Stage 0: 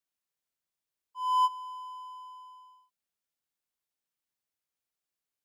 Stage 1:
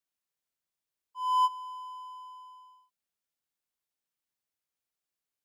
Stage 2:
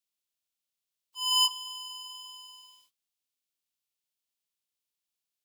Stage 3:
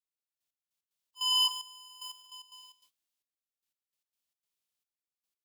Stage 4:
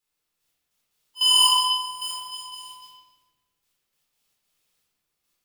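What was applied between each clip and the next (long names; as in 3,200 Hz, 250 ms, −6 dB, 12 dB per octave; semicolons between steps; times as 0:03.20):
no processing that can be heard
ceiling on every frequency bin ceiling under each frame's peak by 25 dB; high shelf with overshoot 2,300 Hz +6.5 dB, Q 1.5; flanger 1.7 Hz, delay 5.6 ms, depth 2 ms, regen −80%
in parallel at −12 dB: bit-depth reduction 6 bits, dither none; on the sum: soft clipping −20 dBFS, distortion −10 dB; gate pattern "....x..x.xx.xxxx" 149 BPM −12 dB
rectangular room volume 1,000 cubic metres, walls mixed, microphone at 4.1 metres; level +8 dB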